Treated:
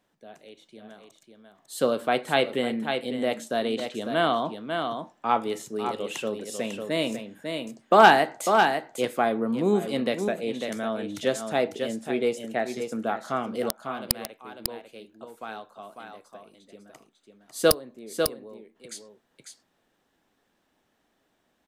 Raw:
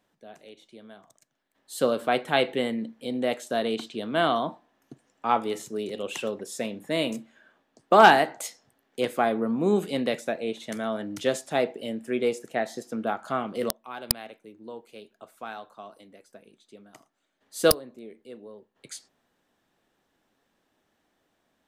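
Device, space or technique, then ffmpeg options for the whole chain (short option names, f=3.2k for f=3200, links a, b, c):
ducked delay: -filter_complex "[0:a]asplit=3[a][b][c];[b]adelay=548,volume=-5.5dB[d];[c]apad=whole_len=980062[e];[d][e]sidechaincompress=threshold=-30dB:ratio=8:attack=6.7:release=130[f];[a][f]amix=inputs=2:normalize=0"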